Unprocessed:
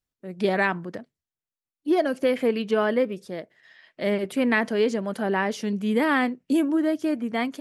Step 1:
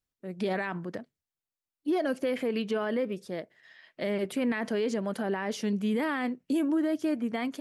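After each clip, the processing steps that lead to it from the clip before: limiter -19 dBFS, peak gain reduction 10.5 dB; gain -2 dB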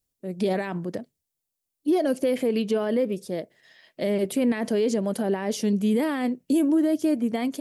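EQ curve 570 Hz 0 dB, 1400 Hz -9 dB, 10000 Hz +5 dB; gain +6 dB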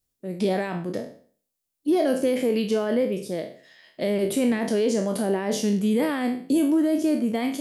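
spectral trails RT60 0.47 s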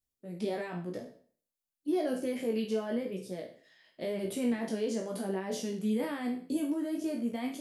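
chorus 0.93 Hz, delay 16 ms, depth 2.3 ms; gain -7 dB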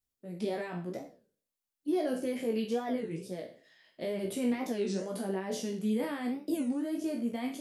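record warp 33 1/3 rpm, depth 250 cents

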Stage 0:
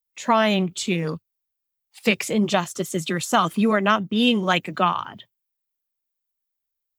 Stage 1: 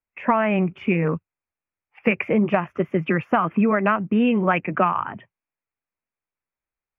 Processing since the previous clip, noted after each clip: elliptic low-pass 2500 Hz, stop band 40 dB; compressor 5:1, threshold -22 dBFS, peak gain reduction 8.5 dB; gain +6.5 dB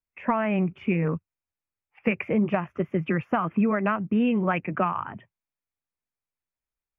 low shelf 160 Hz +7.5 dB; gain -6 dB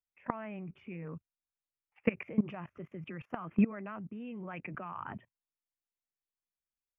level quantiser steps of 20 dB; gain -2 dB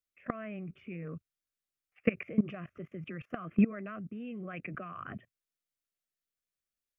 Butterworth band-stop 900 Hz, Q 2.3; gain +1.5 dB

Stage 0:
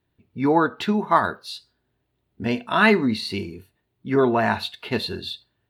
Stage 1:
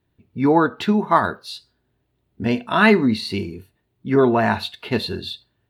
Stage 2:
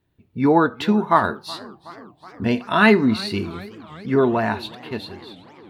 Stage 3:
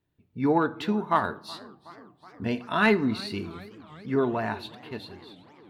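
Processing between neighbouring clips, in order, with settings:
low shelf 480 Hz +3.5 dB; gain +1 dB
ending faded out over 1.83 s; warbling echo 0.366 s, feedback 69%, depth 174 cents, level -21 dB
added harmonics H 3 -24 dB, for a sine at -1 dBFS; reverb RT60 0.85 s, pre-delay 7 ms, DRR 16.5 dB; gain -6 dB

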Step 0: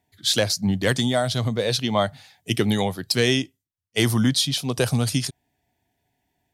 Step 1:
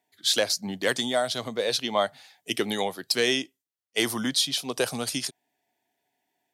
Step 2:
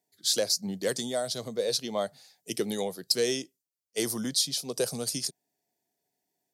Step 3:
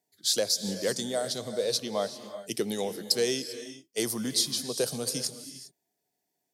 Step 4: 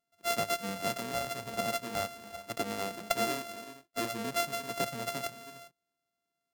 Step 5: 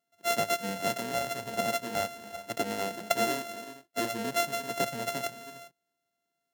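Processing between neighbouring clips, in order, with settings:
HPF 330 Hz 12 dB/oct; gain -2 dB
EQ curve 100 Hz 0 dB, 180 Hz +5 dB, 260 Hz -2 dB, 480 Hz +3 dB, 850 Hz -7 dB, 3200 Hz -8 dB, 4700 Hz +4 dB; gain -3.5 dB
non-linear reverb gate 0.42 s rising, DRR 11 dB
sample sorter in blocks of 64 samples; gain -4.5 dB
notch comb 1200 Hz; gain +3.5 dB

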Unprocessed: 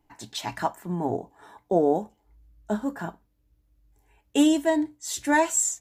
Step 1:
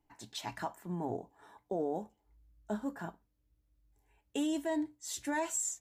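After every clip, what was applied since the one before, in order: limiter -17 dBFS, peak gain reduction 7.5 dB; gain -8.5 dB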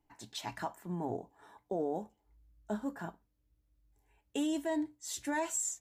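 nothing audible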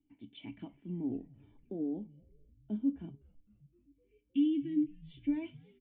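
spectral gain 3.3–4.91, 360–1600 Hz -25 dB; vocal tract filter i; frequency-shifting echo 0.256 s, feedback 64%, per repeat -140 Hz, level -23.5 dB; gain +8 dB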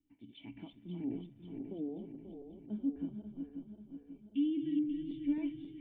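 regenerating reverse delay 0.269 s, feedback 72%, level -6 dB; gain -3.5 dB

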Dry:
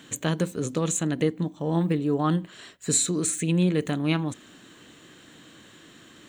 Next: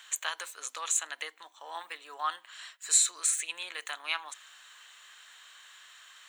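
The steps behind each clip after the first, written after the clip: HPF 950 Hz 24 dB/oct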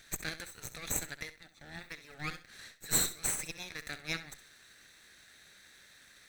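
minimum comb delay 0.5 ms; flutter echo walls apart 11.3 m, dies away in 0.3 s; gain -3.5 dB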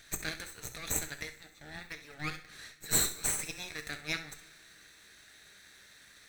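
two-slope reverb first 0.31 s, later 2.1 s, from -18 dB, DRR 8 dB; gain +1 dB

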